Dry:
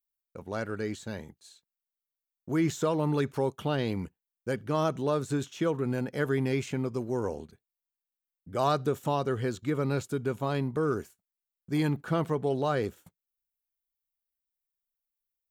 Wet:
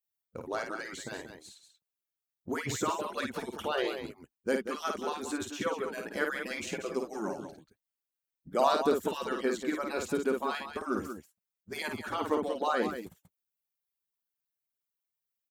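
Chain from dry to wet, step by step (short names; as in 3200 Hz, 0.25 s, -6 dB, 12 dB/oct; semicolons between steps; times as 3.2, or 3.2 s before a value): median-filter separation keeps percussive; loudspeakers at several distances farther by 18 m -5 dB, 64 m -9 dB; gain +2 dB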